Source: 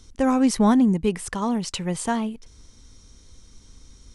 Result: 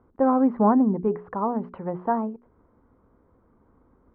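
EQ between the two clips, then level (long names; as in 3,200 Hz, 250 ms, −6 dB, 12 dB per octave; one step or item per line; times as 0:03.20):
resonant band-pass 750 Hz, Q 0.51
low-pass filter 1,300 Hz 24 dB per octave
mains-hum notches 60/120/180/240/300/360/420 Hz
+3.0 dB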